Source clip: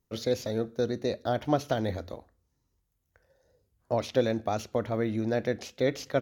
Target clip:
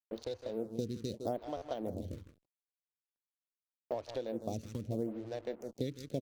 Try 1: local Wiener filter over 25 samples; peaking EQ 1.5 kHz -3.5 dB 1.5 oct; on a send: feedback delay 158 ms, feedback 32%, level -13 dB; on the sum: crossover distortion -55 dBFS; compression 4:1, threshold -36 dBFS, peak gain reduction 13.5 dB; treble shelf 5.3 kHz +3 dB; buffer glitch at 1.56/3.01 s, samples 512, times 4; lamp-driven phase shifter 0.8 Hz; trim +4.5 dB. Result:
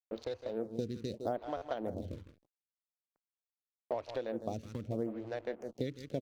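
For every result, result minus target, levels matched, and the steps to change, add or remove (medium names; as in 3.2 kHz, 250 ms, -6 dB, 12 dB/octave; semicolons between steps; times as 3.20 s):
8 kHz band -5.5 dB; 2 kHz band +5.5 dB
change: treble shelf 5.3 kHz +11 dB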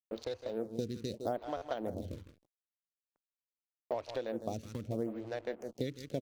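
2 kHz band +6.0 dB
change: peaking EQ 1.5 kHz -14.5 dB 1.5 oct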